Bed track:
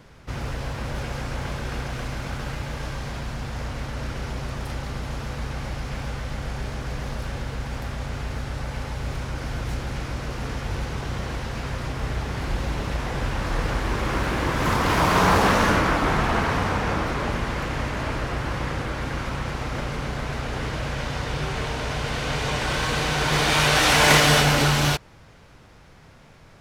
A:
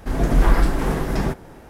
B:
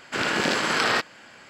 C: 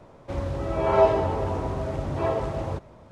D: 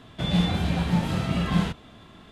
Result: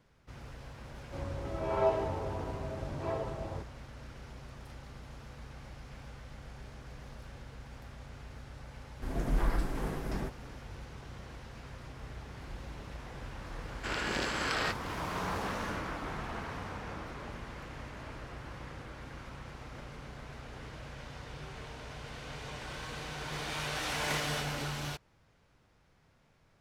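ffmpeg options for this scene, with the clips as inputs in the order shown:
-filter_complex "[0:a]volume=-17.5dB[a];[3:a]atrim=end=3.11,asetpts=PTS-STARTPTS,volume=-10dB,afade=t=in:d=0.004:c=hsin,afade=t=out:st=3.106:d=0.004:c=hsin,adelay=840[b];[1:a]atrim=end=1.69,asetpts=PTS-STARTPTS,volume=-14dB,afade=t=in:d=0.004:c=hsin,afade=t=out:st=1.686:d=0.004:c=hsin,adelay=8960[c];[2:a]atrim=end=1.49,asetpts=PTS-STARTPTS,volume=-10.5dB,afade=t=in:d=0.004:c=hsin,afade=t=out:st=1.486:d=0.004:c=hsin,adelay=13710[d];[a][b][c][d]amix=inputs=4:normalize=0"

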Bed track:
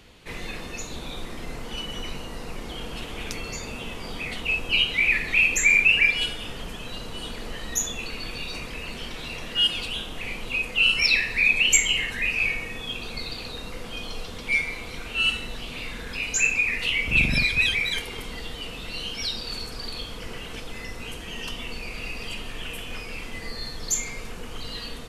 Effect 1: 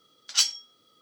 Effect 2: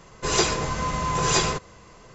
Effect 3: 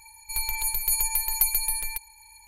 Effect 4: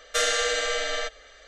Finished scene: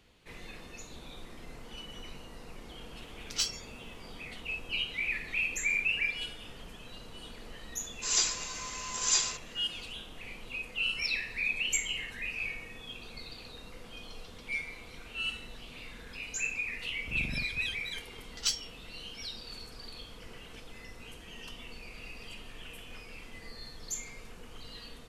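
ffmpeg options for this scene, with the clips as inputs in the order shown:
-filter_complex "[1:a]asplit=2[a][b];[0:a]volume=-12dB[c];[a]asplit=2[d][e];[e]adelay=26,volume=-9dB[f];[d][f]amix=inputs=2:normalize=0[g];[2:a]aderivative[h];[b]agate=range=-33dB:threshold=-51dB:ratio=3:release=100:detection=peak[i];[g]atrim=end=1.01,asetpts=PTS-STARTPTS,volume=-9.5dB,afade=t=in:d=0.004:c=hsin,afade=t=out:st=1.006:d=0.004:c=hsin,adelay=3010[j];[h]atrim=end=2.14,asetpts=PTS-STARTPTS,afade=t=in:d=0.004:c=hsin,afade=t=out:st=2.136:d=0.004:c=hsin,adelay=7790[k];[i]atrim=end=1.01,asetpts=PTS-STARTPTS,volume=-8.5dB,afade=t=in:d=0.004:c=hsin,afade=t=out:st=1.006:d=0.004:c=hsin,adelay=18080[l];[c][j][k][l]amix=inputs=4:normalize=0"

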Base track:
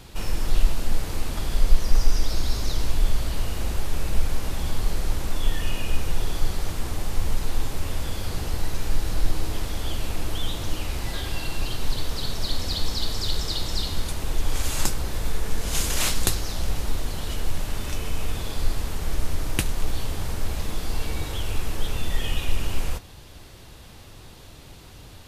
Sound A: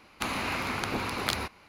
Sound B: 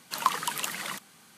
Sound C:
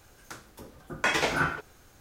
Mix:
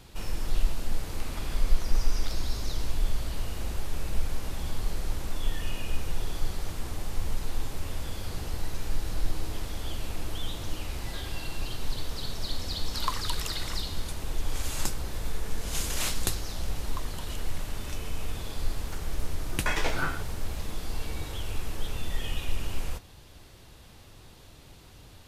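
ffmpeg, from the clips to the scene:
-filter_complex "[2:a]asplit=2[a][b];[0:a]volume=-6dB[c];[1:a]atrim=end=1.68,asetpts=PTS-STARTPTS,volume=-17dB,afade=t=in:d=0.004:c=hsin,afade=t=out:st=1.676:d=0.004:c=hsin,adelay=980[d];[a]atrim=end=1.37,asetpts=PTS-STARTPTS,volume=-6.5dB,afade=t=in:d=0.004:c=hsin,afade=t=out:st=1.366:d=0.004:c=hsin,adelay=12820[e];[b]atrim=end=1.37,asetpts=PTS-STARTPTS,volume=-17.5dB,afade=t=in:d=0.004:c=hsin,afade=t=out:st=1.366:d=0.004:c=hsin,adelay=16710[f];[3:a]atrim=end=2,asetpts=PTS-STARTPTS,volume=-4.5dB,afade=t=in:d=0.004:c=hsin,afade=t=out:st=1.996:d=0.004:c=hsin,adelay=18620[g];[c][d][e][f][g]amix=inputs=5:normalize=0"

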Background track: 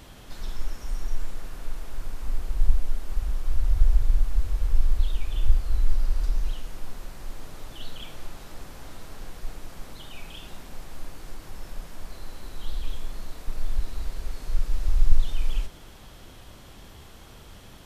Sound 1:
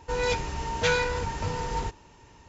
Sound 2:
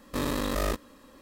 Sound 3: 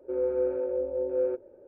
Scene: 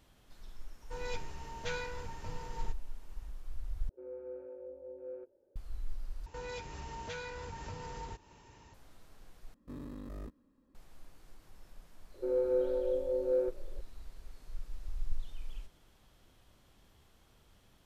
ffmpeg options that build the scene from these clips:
-filter_complex "[1:a]asplit=2[a][b];[3:a]asplit=2[c][d];[0:a]volume=-17.5dB[e];[b]acompressor=threshold=-34dB:ratio=4:attack=1:release=498:knee=1:detection=peak[f];[2:a]firequalizer=gain_entry='entry(260,0);entry(520,-10);entry(3100,-18)':delay=0.05:min_phase=1[g];[e]asplit=4[h][i][j][k];[h]atrim=end=3.894[l];[c]atrim=end=1.67,asetpts=PTS-STARTPTS,volume=-17.5dB[m];[i]atrim=start=5.556:end=6.264[n];[f]atrim=end=2.48,asetpts=PTS-STARTPTS,volume=-4.5dB[o];[j]atrim=start=8.736:end=9.544[p];[g]atrim=end=1.21,asetpts=PTS-STARTPTS,volume=-13dB[q];[k]atrim=start=10.746[r];[a]atrim=end=2.48,asetpts=PTS-STARTPTS,volume=-14.5dB,afade=t=in:d=0.004:c=hsin,afade=t=out:st=2.476:d=0.004:c=hsin,adelay=820[s];[d]atrim=end=1.67,asetpts=PTS-STARTPTS,volume=-3dB,afade=t=in:d=0.004:c=hsin,afade=t=out:st=1.666:d=0.004:c=hsin,adelay=12140[t];[l][m]acrossfade=d=0.004:c1=hsin:c2=hsin[u];[u][n]acrossfade=d=0.004:c1=hsin:c2=hsin[v];[v][o]acrossfade=d=0.004:c1=hsin:c2=hsin[w];[w][p]acrossfade=d=0.004:c1=hsin:c2=hsin[x];[x][q]acrossfade=d=0.004:c1=hsin:c2=hsin[y];[y][r]acrossfade=d=0.004:c1=hsin:c2=hsin[z];[z][s][t]amix=inputs=3:normalize=0"

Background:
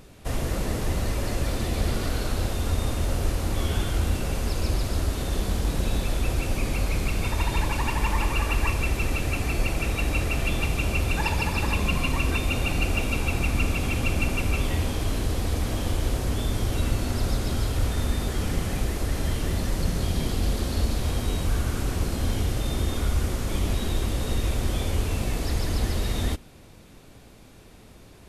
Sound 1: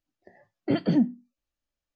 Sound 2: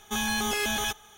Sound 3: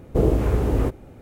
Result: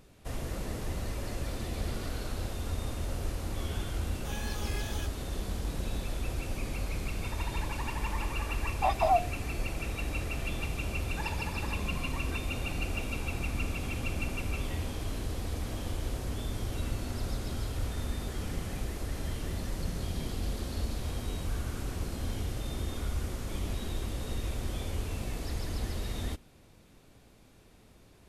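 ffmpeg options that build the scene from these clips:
-filter_complex "[0:a]volume=-9dB[a];[2:a]flanger=delay=16:depth=5.7:speed=2.3[b];[1:a]afreqshift=470[c];[b]atrim=end=1.17,asetpts=PTS-STARTPTS,volume=-11.5dB,afade=t=in:d=0.004:c=hsin,afade=t=out:st=1.166:d=0.004:c=hsin,adelay=4140[d];[c]atrim=end=1.95,asetpts=PTS-STARTPTS,volume=-3.5dB,afade=t=in:d=0.004:c=hsin,afade=t=out:st=1.946:d=0.004:c=hsin,adelay=8140[e];[a][d][e]amix=inputs=3:normalize=0"

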